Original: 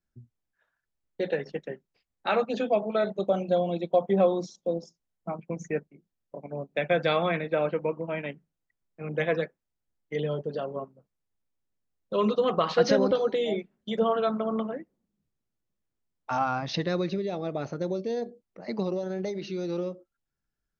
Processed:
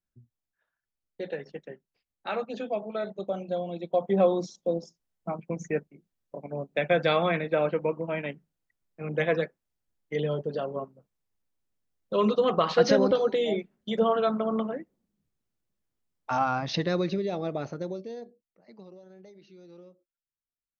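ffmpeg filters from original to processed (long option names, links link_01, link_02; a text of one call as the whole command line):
ffmpeg -i in.wav -af "volume=1dB,afade=type=in:start_time=3.75:duration=0.57:silence=0.446684,afade=type=out:start_time=17.44:duration=0.64:silence=0.354813,afade=type=out:start_time=18.08:duration=0.54:silence=0.281838" out.wav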